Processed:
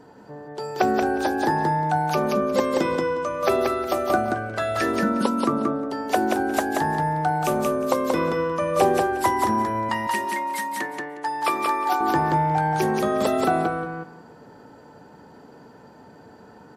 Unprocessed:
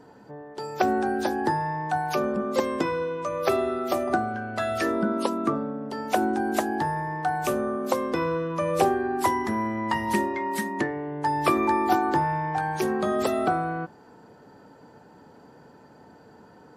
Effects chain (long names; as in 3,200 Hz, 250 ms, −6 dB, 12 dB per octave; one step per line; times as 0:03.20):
0:09.89–0:12.01: high-pass filter 1,000 Hz 6 dB per octave
repeating echo 180 ms, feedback 17%, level −3 dB
level +2 dB